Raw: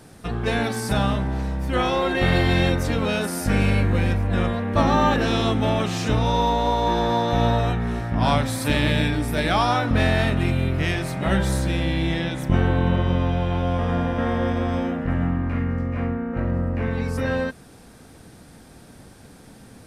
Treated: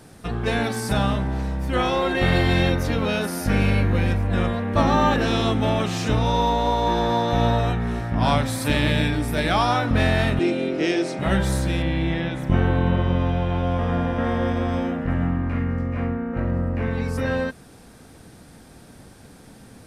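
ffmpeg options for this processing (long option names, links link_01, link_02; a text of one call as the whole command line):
ffmpeg -i in.wav -filter_complex "[0:a]asettb=1/sr,asplit=3[link_01][link_02][link_03];[link_01]atrim=end=2.624[link_04];[link_02]atrim=start=2.62:end=4.08,asetpts=PTS-STARTPTS,afade=type=in:duration=0.004:curve=qsin,afade=type=out:start_time=1.456:duration=0.004:curve=qsin,equalizer=frequency=8000:width_type=o:width=0.28:gain=-8[link_05];[link_03]atrim=start=4.076[link_06];[link_04][link_05]acrossfade=duration=0.004:curve1=hsin:curve2=qsin[link_07];[link_07][link_06]acrossfade=duration=0.004:curve1=qsin:curve2=hsin,asettb=1/sr,asplit=3[link_08][link_09][link_10];[link_08]atrim=end=10.394[link_11];[link_09]atrim=start=10.39:end=11.19,asetpts=PTS-STARTPTS,afade=type=in:duration=0.004:curve=qsin,afade=type=out:start_time=0.796:duration=0.004:curve=qsin,highpass=frequency=200:width=0.5412,highpass=frequency=200:width=1.3066,equalizer=frequency=330:width_type=q:width=4:gain=10,equalizer=frequency=490:width_type=q:width=4:gain=8,equalizer=frequency=1100:width_type=q:width=4:gain=-7,equalizer=frequency=1800:width_type=q:width=4:gain=-3,equalizer=frequency=5500:width_type=q:width=4:gain=6,lowpass=frequency=8500:width=0.5412,lowpass=frequency=8500:width=1.3066[link_12];[link_10]atrim=start=11.186[link_13];[link_11][link_12]acrossfade=duration=0.004:curve1=hsin:curve2=qsin[link_14];[link_14][link_13]acrossfade=duration=0.004:curve1=qsin:curve2=hsin,asettb=1/sr,asplit=3[link_15][link_16][link_17];[link_15]atrim=end=11.824[link_18];[link_16]atrim=start=11.82:end=14.24,asetpts=PTS-STARTPTS,afade=type=in:duration=0.004:curve=qsin,afade=type=out:start_time=2.416:duration=0.004:curve=qsin,acrossover=split=3300[link_19][link_20];[link_20]acompressor=threshold=-49dB:ratio=4:attack=1:release=60[link_21];[link_19][link_21]amix=inputs=2:normalize=0[link_22];[link_17]atrim=start=14.236[link_23];[link_18][link_22]acrossfade=duration=0.004:curve1=hsin:curve2=qsin[link_24];[link_24][link_23]acrossfade=duration=0.004:curve1=qsin:curve2=hsin" out.wav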